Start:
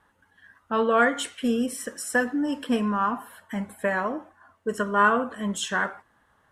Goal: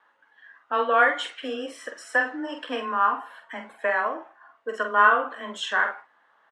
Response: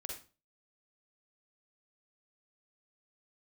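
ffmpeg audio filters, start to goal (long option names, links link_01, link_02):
-filter_complex "[0:a]afreqshift=15,highpass=590,lowpass=3600,asplit=2[link_01][link_02];[link_02]adelay=46,volume=-7dB[link_03];[link_01][link_03]amix=inputs=2:normalize=0,volume=2.5dB"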